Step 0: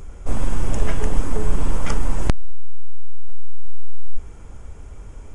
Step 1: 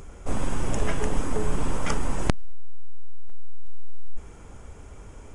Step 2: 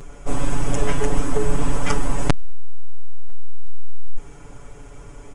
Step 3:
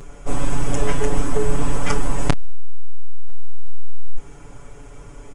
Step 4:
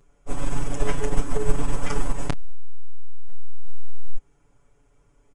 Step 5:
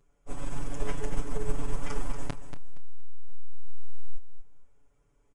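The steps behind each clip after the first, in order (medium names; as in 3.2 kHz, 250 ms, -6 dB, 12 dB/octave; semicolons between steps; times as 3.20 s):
bass shelf 86 Hz -9 dB
comb 7 ms, depth 95%; trim +1.5 dB
doubling 28 ms -13 dB
upward expansion 2.5:1, over -20 dBFS
feedback delay 234 ms, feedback 22%, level -9 dB; trim -8.5 dB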